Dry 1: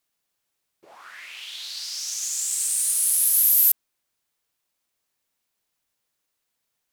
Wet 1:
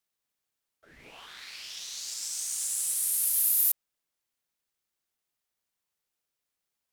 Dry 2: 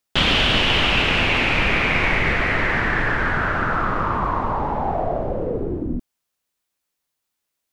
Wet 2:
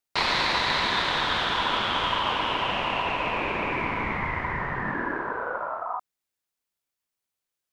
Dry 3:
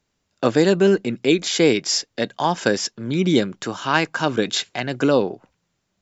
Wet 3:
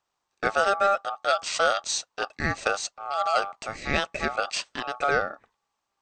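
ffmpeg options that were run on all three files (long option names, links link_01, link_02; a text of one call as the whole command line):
ffmpeg -i in.wav -af "aeval=exprs='val(0)*sin(2*PI*990*n/s)':channel_layout=same,volume=-4dB" out.wav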